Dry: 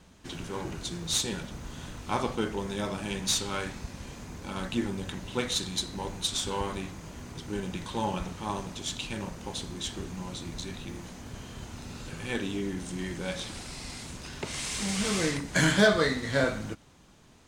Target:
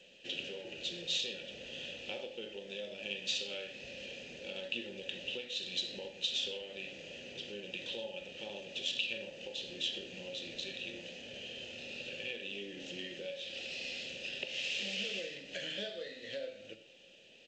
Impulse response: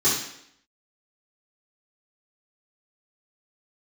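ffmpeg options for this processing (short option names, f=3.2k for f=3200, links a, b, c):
-filter_complex "[0:a]asplit=3[a][b][c];[a]bandpass=f=530:t=q:w=8,volume=0dB[d];[b]bandpass=f=1.84k:t=q:w=8,volume=-6dB[e];[c]bandpass=f=2.48k:t=q:w=8,volume=-9dB[f];[d][e][f]amix=inputs=3:normalize=0,acompressor=threshold=-52dB:ratio=4,highshelf=f=2.3k:t=q:w=3:g=8,aecho=1:1:82|164|246:0.0841|0.0362|0.0156,asplit=2[g][h];[1:a]atrim=start_sample=2205,atrim=end_sample=4410,asetrate=33075,aresample=44100[i];[h][i]afir=irnorm=-1:irlink=0,volume=-24.5dB[j];[g][j]amix=inputs=2:normalize=0,volume=9dB" -ar 16000 -c:a g722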